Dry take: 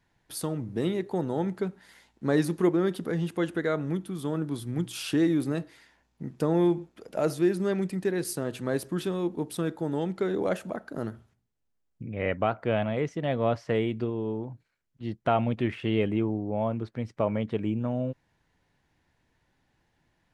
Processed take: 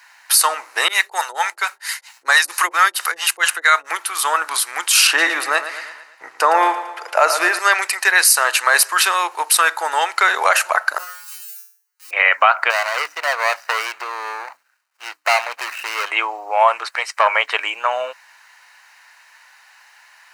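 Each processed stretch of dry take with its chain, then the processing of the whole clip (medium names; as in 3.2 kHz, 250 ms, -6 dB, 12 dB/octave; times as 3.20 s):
0.88–3.91 s: tilt EQ +2.5 dB/octave + harmonic tremolo 4.4 Hz, depth 100%, crossover 440 Hz
5.07–7.59 s: tilt EQ -3 dB/octave + feedback delay 113 ms, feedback 52%, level -12 dB
10.98–12.11 s: zero-crossing glitches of -34 dBFS + feedback comb 180 Hz, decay 0.45 s, mix 100%
12.70–16.11 s: median filter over 41 samples + compression 2:1, threshold -33 dBFS + hum notches 50/100/150/200/250/300 Hz
16.68–17.28 s: self-modulated delay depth 0.093 ms + peaking EQ 9 kHz +6 dB 0.64 oct
whole clip: inverse Chebyshev high-pass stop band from 220 Hz, stop band 70 dB; band-stop 3.4 kHz, Q 5.2; loudness maximiser +29.5 dB; trim -1 dB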